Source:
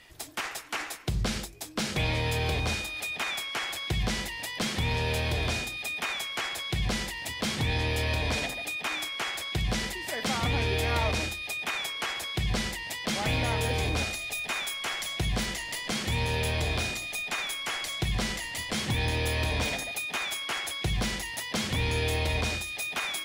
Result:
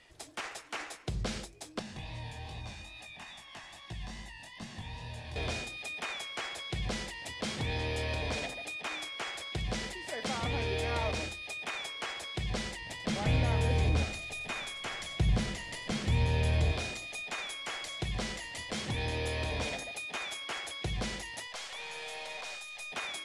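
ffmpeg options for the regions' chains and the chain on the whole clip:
ffmpeg -i in.wav -filter_complex "[0:a]asettb=1/sr,asplit=3[link_01][link_02][link_03];[link_01]atrim=end=1.794[link_04];[link_02]atrim=start=1.79:end=5.36,asetpts=PTS-STARTPTS,afade=type=in:duration=0.004:curve=qsin,afade=type=out:start_time=3.566:duration=0.004:curve=qsin,aecho=1:1:1.1:0.61,atrim=end_sample=157437,acrossover=split=240|3600[link_05][link_06][link_07];[link_05]acompressor=threshold=-33dB:ratio=4[link_08];[link_06]acompressor=threshold=-40dB:ratio=4[link_09];[link_07]acompressor=threshold=-45dB:ratio=4[link_10];[link_08][link_09][link_10]amix=inputs=3:normalize=0,flanger=delay=16:depth=7.2:speed=2.4[link_11];[link_03]atrim=start=5.356[link_12];[link_04][link_11]acrossfade=duration=0.004:curve1=hsin:curve2=qsin[link_13];[link_13][link_12]acrossfade=duration=0.004:curve1=qsin:curve2=hsin,asettb=1/sr,asplit=3[link_14][link_15][link_16];[link_14]atrim=end=12.814[link_17];[link_15]atrim=start=12.81:end=16.72,asetpts=PTS-STARTPTS,afade=type=in:duration=0.004:curve=qsin,afade=type=out:start_time=3.906:duration=0.004:curve=qsin,bass=frequency=250:gain=9,treble=frequency=4000:gain=-2,aecho=1:1:91:0.2,atrim=end_sample=172431[link_18];[link_16]atrim=start=16.716[link_19];[link_17][link_18]acrossfade=duration=0.004:curve1=hsin:curve2=qsin[link_20];[link_20][link_19]acrossfade=duration=0.004:curve1=qsin:curve2=hsin,asettb=1/sr,asplit=3[link_21][link_22][link_23];[link_21]atrim=end=21.474[link_24];[link_22]atrim=start=21.47:end=22.92,asetpts=PTS-STARTPTS,afade=type=in:duration=0.004:curve=qsin,afade=type=out:start_time=1.446:duration=0.004:curve=qsin,highpass=frequency=630:width=0.5412,highpass=frequency=630:width=1.3066,aeval=exprs='(tanh(31.6*val(0)+0.4)-tanh(0.4))/31.6':channel_layout=same[link_25];[link_23]atrim=start=22.916[link_26];[link_24][link_25]acrossfade=duration=0.004:curve1=hsin:curve2=qsin[link_27];[link_27][link_26]acrossfade=duration=0.004:curve1=qsin:curve2=hsin,lowpass=frequency=10000:width=0.5412,lowpass=frequency=10000:width=1.3066,equalizer=frequency=530:width_type=o:width=1.1:gain=4,volume=-6.5dB" out.wav

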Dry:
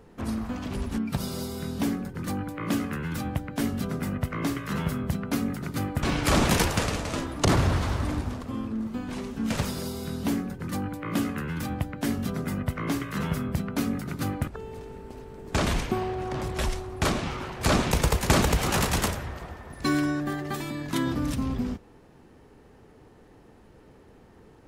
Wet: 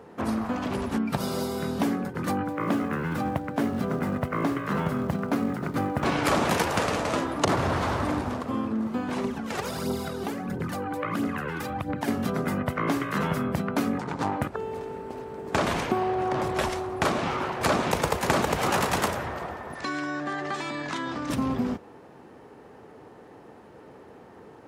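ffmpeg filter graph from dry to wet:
ffmpeg -i in.wav -filter_complex "[0:a]asettb=1/sr,asplit=3[link_01][link_02][link_03];[link_01]atrim=end=2.454[link_04];[link_02]atrim=start=2.45:end=6.06,asetpts=PTS-STARTPTS,afade=type=in:duration=0.004:curve=qsin,afade=type=out:start_time=3.606:duration=0.004:curve=qsin,acrusher=bits=5:mode=log:mix=0:aa=0.000001,highshelf=frequency=2300:gain=-8[link_05];[link_03]atrim=start=6.056[link_06];[link_04][link_05]acrossfade=duration=0.004:curve1=hsin:curve2=qsin[link_07];[link_07][link_06]acrossfade=duration=0.004:curve1=qsin:curve2=hsin,asettb=1/sr,asplit=3[link_08][link_09][link_10];[link_08]atrim=end=9.244[link_11];[link_09]atrim=start=9.24:end=12.08,asetpts=PTS-STARTPTS,afade=type=in:duration=0.004:curve=qsin,afade=type=out:start_time=2.836:duration=0.004:curve=qsin,acompressor=threshold=-31dB:ratio=6:attack=3.2:release=140:knee=1:detection=peak,aphaser=in_gain=1:out_gain=1:delay=2.8:decay=0.55:speed=1.5:type=triangular[link_12];[link_10]atrim=start=12.076[link_13];[link_11][link_12]acrossfade=duration=0.004:curve1=hsin:curve2=qsin[link_14];[link_14][link_13]acrossfade=duration=0.004:curve1=qsin:curve2=hsin,asettb=1/sr,asplit=3[link_15][link_16][link_17];[link_15]atrim=end=13.984[link_18];[link_16]atrim=start=13.98:end=14.39,asetpts=PTS-STARTPTS,afade=type=in:duration=0.004:curve=qsin,afade=type=out:start_time=0.406:duration=0.004:curve=qsin,lowpass=frequency=8200:width=0.5412,lowpass=frequency=8200:width=1.3066,aeval=exprs='clip(val(0),-1,0.00891)':channel_layout=same,equalizer=frequency=900:width_type=o:width=0.36:gain=9.5[link_19];[link_17]atrim=start=14.386[link_20];[link_18][link_19]acrossfade=duration=0.004:curve1=hsin:curve2=qsin[link_21];[link_21][link_20]acrossfade=duration=0.004:curve1=qsin:curve2=hsin,asettb=1/sr,asplit=3[link_22][link_23][link_24];[link_22]atrim=end=19.754[link_25];[link_23]atrim=start=19.75:end=21.3,asetpts=PTS-STARTPTS,afade=type=in:duration=0.004:curve=qsin,afade=type=out:start_time=1.546:duration=0.004:curve=qsin,lowpass=frequency=7700:width=0.5412,lowpass=frequency=7700:width=1.3066,tiltshelf=frequency=680:gain=-5,acompressor=threshold=-33dB:ratio=6:attack=3.2:release=140:knee=1:detection=peak[link_26];[link_24]atrim=start=21.296[link_27];[link_25][link_26]acrossfade=duration=0.004:curve1=hsin:curve2=qsin[link_28];[link_28][link_27]acrossfade=duration=0.004:curve1=qsin:curve2=hsin,highpass=96,equalizer=frequency=800:width_type=o:width=3:gain=9,acompressor=threshold=-22dB:ratio=3" out.wav

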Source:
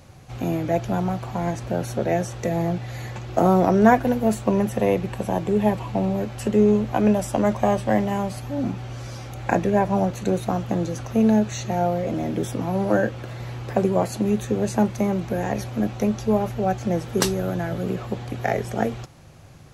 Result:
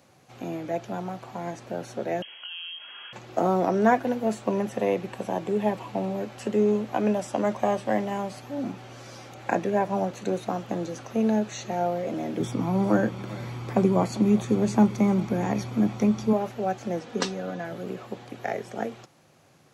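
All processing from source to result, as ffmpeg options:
ffmpeg -i in.wav -filter_complex "[0:a]asettb=1/sr,asplit=3[link_01][link_02][link_03];[link_01]atrim=end=2.224[link_04];[link_02]atrim=start=2.22:end=3.13,asetpts=PTS-STARTPTS,afade=type=in:duration=0.004:curve=qsin,afade=type=out:start_time=0.906:duration=0.004:curve=qsin,highpass=frequency=150:width=0.5412,highpass=frequency=150:width=1.3066,acompressor=threshold=-29dB:ratio=6:attack=3.2:release=140:knee=1:detection=peak,lowpass=frequency=2900:width_type=q:width=0.5098,lowpass=frequency=2900:width_type=q:width=0.6013,lowpass=frequency=2900:width_type=q:width=0.9,lowpass=frequency=2900:width_type=q:width=2.563,afreqshift=-3400[link_05];[link_03]atrim=start=3.126[link_06];[link_04][link_05]acrossfade=duration=0.004:curve1=hsin:curve2=qsin[link_07];[link_07][link_06]acrossfade=duration=0.004:curve1=qsin:curve2=hsin,asettb=1/sr,asplit=3[link_08][link_09][link_10];[link_08]atrim=end=12.404[link_11];[link_09]atrim=start=12.4:end=16.33,asetpts=PTS-STARTPTS,afade=type=in:duration=0.004:curve=qsin,afade=type=out:start_time=3.926:duration=0.004:curve=qsin,lowshelf=frequency=230:gain=10,aecho=1:1:0.9:0.38,atrim=end_sample=173313,aecho=1:1:397:0.112,atrim=end_sample=173313[link_12];[link_10]atrim=start=16.326[link_13];[link_11][link_12]acrossfade=duration=0.004:curve1=hsin:curve2=qsin[link_14];[link_14][link_13]acrossfade=duration=0.004:curve1=qsin:curve2=hsin,asettb=1/sr,asplit=3[link_15][link_16][link_17];[link_15]atrim=end=16.994[link_18];[link_16]atrim=start=16.99:end=17.65,asetpts=PTS-STARTPTS,afade=type=in:duration=0.004:curve=qsin,afade=type=out:start_time=0.656:duration=0.004:curve=qsin,lowpass=6100,aecho=1:1:4.1:0.53,atrim=end_sample=29106[link_19];[link_17]atrim=start=17.646[link_20];[link_18][link_19]acrossfade=duration=0.004:curve1=hsin:curve2=qsin[link_21];[link_21][link_20]acrossfade=duration=0.004:curve1=qsin:curve2=hsin,acrossover=split=8400[link_22][link_23];[link_23]acompressor=threshold=-58dB:ratio=4:attack=1:release=60[link_24];[link_22][link_24]amix=inputs=2:normalize=0,highpass=210,dynaudnorm=framelen=210:gausssize=31:maxgain=11.5dB,volume=-6.5dB" out.wav

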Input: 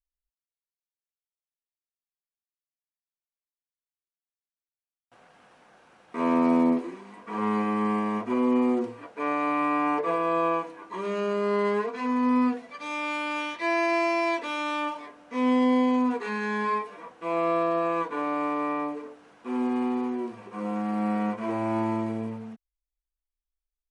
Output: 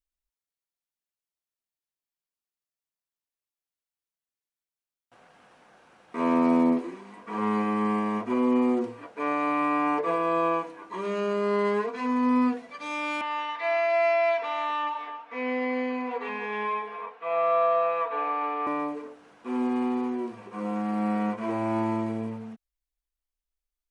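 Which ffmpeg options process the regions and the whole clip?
ffmpeg -i in.wav -filter_complex "[0:a]asettb=1/sr,asplit=3[link_01][link_02][link_03];[link_01]atrim=end=13.214[link_04];[link_02]atrim=start=13.21:end=18.67,asetpts=PTS-STARTPTS,afade=type=in:duration=0.004:curve=qsin,afade=type=out:start_time=5.456:duration=0.004:curve=qsin,acrossover=split=480 3600:gain=0.126 1 0.0891[link_05][link_06][link_07];[link_05][link_06][link_07]amix=inputs=3:normalize=0,aecho=1:1:4.4:0.8,atrim=end_sample=240786,aecho=1:1:276:0.299,atrim=end_sample=240786[link_08];[link_03]atrim=start=18.666[link_09];[link_04][link_08]acrossfade=duration=0.004:curve1=hsin:curve2=qsin[link_10];[link_10][link_09]acrossfade=duration=0.004:curve1=qsin:curve2=hsin" out.wav

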